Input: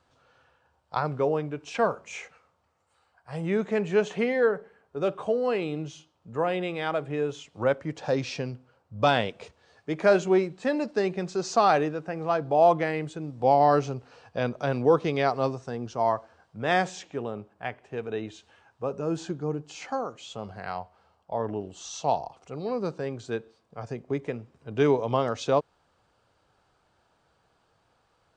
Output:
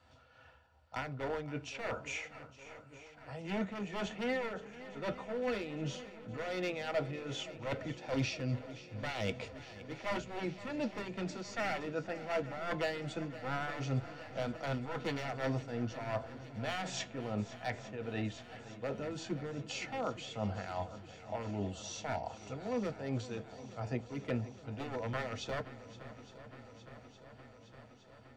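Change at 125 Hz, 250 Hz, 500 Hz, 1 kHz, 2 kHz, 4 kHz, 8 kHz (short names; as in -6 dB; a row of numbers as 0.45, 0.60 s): -5.5, -8.5, -13.5, -14.5, -7.5, -5.0, -5.5 dB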